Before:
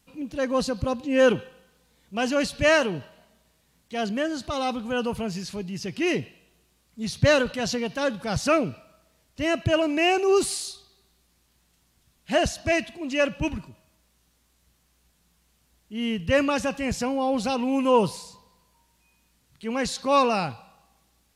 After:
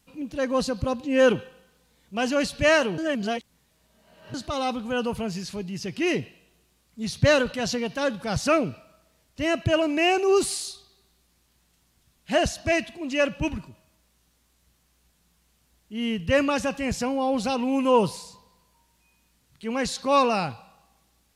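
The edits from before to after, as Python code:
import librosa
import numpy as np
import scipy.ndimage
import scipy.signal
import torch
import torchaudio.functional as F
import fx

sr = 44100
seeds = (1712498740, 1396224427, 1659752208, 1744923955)

y = fx.edit(x, sr, fx.reverse_span(start_s=2.98, length_s=1.36), tone=tone)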